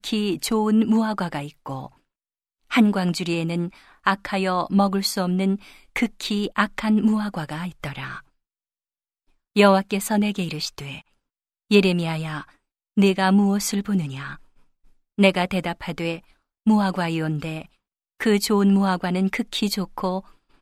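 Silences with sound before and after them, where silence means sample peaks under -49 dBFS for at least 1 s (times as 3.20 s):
8.21–9.56 s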